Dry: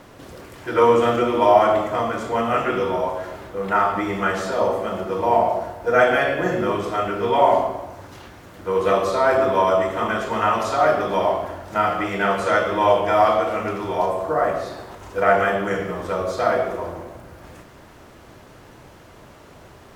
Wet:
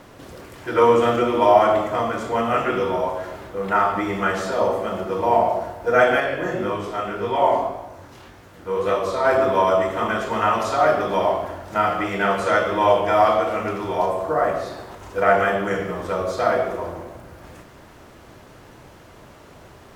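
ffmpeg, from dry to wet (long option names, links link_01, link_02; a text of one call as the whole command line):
ffmpeg -i in.wav -filter_complex "[0:a]asettb=1/sr,asplit=3[link_01][link_02][link_03];[link_01]atrim=end=6.204[link_04];[link_02]atrim=start=6.2:end=9.25,asetpts=PTS-STARTPTS,afade=type=in:duration=0.004:curve=qsin,afade=type=out:start_time=3.046:duration=0.004:curve=qsin,flanger=delay=18:depth=7.5:speed=1.8[link_05];[link_03]atrim=start=9.246[link_06];[link_04][link_05]acrossfade=duration=0.004:curve1=hsin:curve2=qsin[link_07];[link_07][link_06]acrossfade=duration=0.004:curve1=qsin:curve2=hsin" out.wav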